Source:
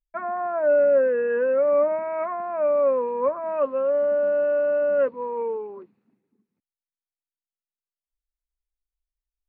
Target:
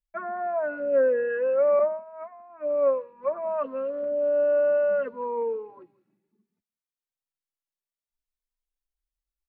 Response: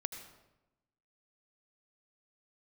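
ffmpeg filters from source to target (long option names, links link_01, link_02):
-filter_complex "[0:a]asplit=2[link_01][link_02];[link_02]adelay=174.9,volume=-24dB,highshelf=frequency=4000:gain=-3.94[link_03];[link_01][link_03]amix=inputs=2:normalize=0,asettb=1/sr,asplit=3[link_04][link_05][link_06];[link_04]atrim=end=1.794[link_07];[link_05]atrim=start=1.79:end=3.31,asetpts=PTS-STARTPTS,afade=type=in:duration=0.004:curve=qsin,afade=type=out:start_time=1.516:duration=0.004:curve=qsin,agate=range=-33dB:threshold=-18dB:ratio=3:detection=peak[link_08];[link_06]atrim=start=3.306[link_09];[link_07][link_08]acrossfade=duration=0.004:curve1=hsin:curve2=qsin[link_10];[link_10][link_09]acrossfade=duration=0.004:curve1=qsin:curve2=hsin,asplit=2[link_11][link_12];[link_12]adelay=3.1,afreqshift=0.65[link_13];[link_11][link_13]amix=inputs=2:normalize=1"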